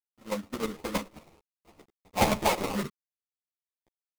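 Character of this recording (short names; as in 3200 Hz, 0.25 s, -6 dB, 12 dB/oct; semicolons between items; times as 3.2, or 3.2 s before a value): a quantiser's noise floor 10-bit, dither none; chopped level 9.5 Hz, depth 60%, duty 15%; aliases and images of a low sample rate 1600 Hz, jitter 20%; a shimmering, thickened sound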